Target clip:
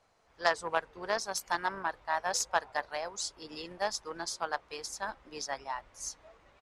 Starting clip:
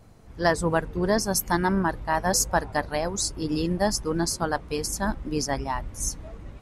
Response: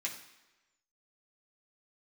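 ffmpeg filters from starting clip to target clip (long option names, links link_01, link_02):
-filter_complex "[0:a]asplit=2[link_01][link_02];[link_02]asetrate=33038,aresample=44100,atempo=1.33484,volume=-15dB[link_03];[link_01][link_03]amix=inputs=2:normalize=0,aeval=exprs='0.447*(cos(1*acos(clip(val(0)/0.447,-1,1)))-cos(1*PI/2))+0.0891*(cos(3*acos(clip(val(0)/0.447,-1,1)))-cos(3*PI/2))+0.00355*(cos(5*acos(clip(val(0)/0.447,-1,1)))-cos(5*PI/2))':channel_layout=same,acrossover=split=520 7800:gain=0.0891 1 0.158[link_04][link_05][link_06];[link_04][link_05][link_06]amix=inputs=3:normalize=0"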